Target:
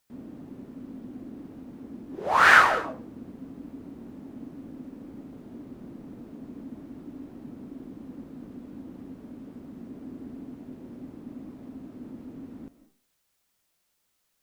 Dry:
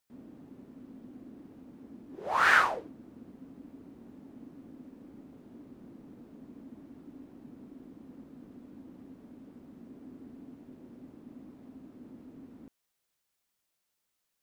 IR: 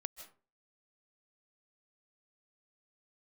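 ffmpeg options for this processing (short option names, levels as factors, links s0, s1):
-filter_complex "[0:a]asplit=2[s0][s1];[1:a]atrim=start_sample=2205,lowshelf=f=200:g=4.5[s2];[s1][s2]afir=irnorm=-1:irlink=0,volume=2.66[s3];[s0][s3]amix=inputs=2:normalize=0,volume=0.75"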